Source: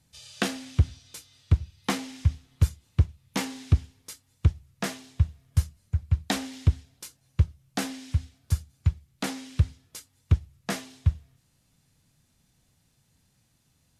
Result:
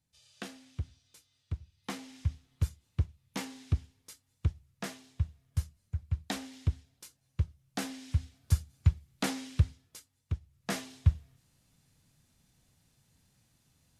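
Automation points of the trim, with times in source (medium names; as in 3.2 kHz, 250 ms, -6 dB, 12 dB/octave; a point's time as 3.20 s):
1.59 s -15.5 dB
2.17 s -8.5 dB
7.42 s -8.5 dB
8.56 s -1 dB
9.44 s -1 dB
10.40 s -13.5 dB
10.78 s -1.5 dB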